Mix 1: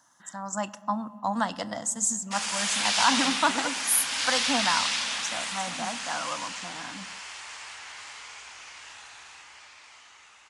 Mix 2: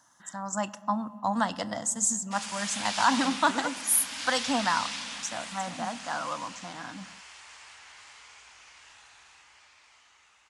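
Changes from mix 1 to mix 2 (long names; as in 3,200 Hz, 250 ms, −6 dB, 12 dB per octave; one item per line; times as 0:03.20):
background −8.0 dB
master: add low-shelf EQ 62 Hz +10 dB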